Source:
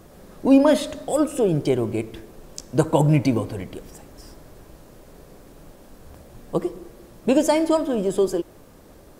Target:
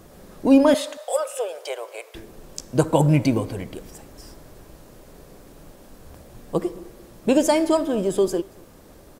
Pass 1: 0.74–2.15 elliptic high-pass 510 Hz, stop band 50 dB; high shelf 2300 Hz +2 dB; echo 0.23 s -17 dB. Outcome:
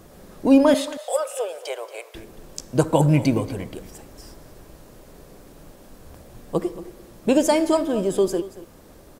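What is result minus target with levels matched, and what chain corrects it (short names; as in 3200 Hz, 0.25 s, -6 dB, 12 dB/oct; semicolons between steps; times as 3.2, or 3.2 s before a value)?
echo-to-direct +10.5 dB
0.74–2.15 elliptic high-pass 510 Hz, stop band 50 dB; high shelf 2300 Hz +2 dB; echo 0.23 s -27.5 dB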